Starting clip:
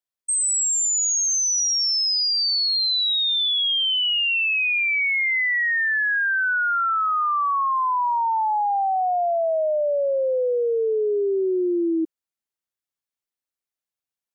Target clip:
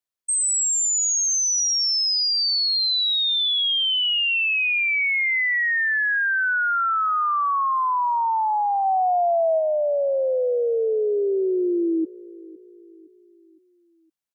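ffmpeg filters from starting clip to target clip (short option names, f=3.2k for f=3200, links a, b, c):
-filter_complex "[0:a]asplit=3[a][b][c];[a]afade=t=out:st=8.84:d=0.02[d];[b]lowshelf=f=370:g=8.5,afade=t=in:st=8.84:d=0.02,afade=t=out:st=9.58:d=0.02[e];[c]afade=t=in:st=9.58:d=0.02[f];[d][e][f]amix=inputs=3:normalize=0,asplit=2[g][h];[h]adelay=512,lowpass=f=850:p=1,volume=-19.5dB,asplit=2[i][j];[j]adelay=512,lowpass=f=850:p=1,volume=0.51,asplit=2[k][l];[l]adelay=512,lowpass=f=850:p=1,volume=0.51,asplit=2[m][n];[n]adelay=512,lowpass=f=850:p=1,volume=0.51[o];[g][i][k][m][o]amix=inputs=5:normalize=0"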